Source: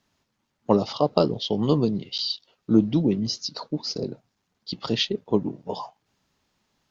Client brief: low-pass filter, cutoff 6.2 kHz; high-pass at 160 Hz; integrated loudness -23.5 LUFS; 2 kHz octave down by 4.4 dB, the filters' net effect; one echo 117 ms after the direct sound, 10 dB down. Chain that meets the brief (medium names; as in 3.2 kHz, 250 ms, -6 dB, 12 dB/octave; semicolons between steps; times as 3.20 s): high-pass 160 Hz; low-pass 6.2 kHz; peaking EQ 2 kHz -6.5 dB; delay 117 ms -10 dB; trim +2.5 dB